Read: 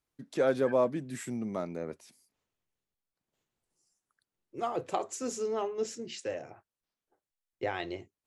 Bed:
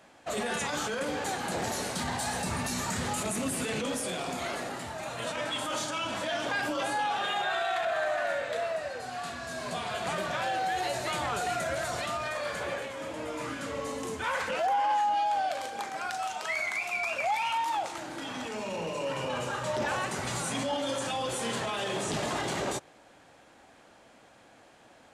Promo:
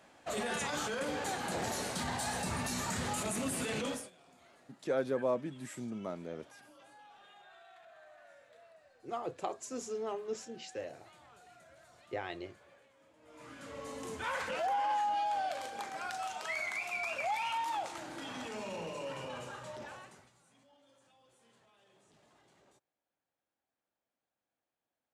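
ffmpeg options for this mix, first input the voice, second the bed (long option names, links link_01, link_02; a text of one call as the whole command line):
ffmpeg -i stem1.wav -i stem2.wav -filter_complex "[0:a]adelay=4500,volume=-5.5dB[link_01];[1:a]volume=18.5dB,afade=type=out:start_time=3.88:duration=0.22:silence=0.0630957,afade=type=in:start_time=13.21:duration=1.02:silence=0.0749894,afade=type=out:start_time=18.6:duration=1.71:silence=0.0316228[link_02];[link_01][link_02]amix=inputs=2:normalize=0" out.wav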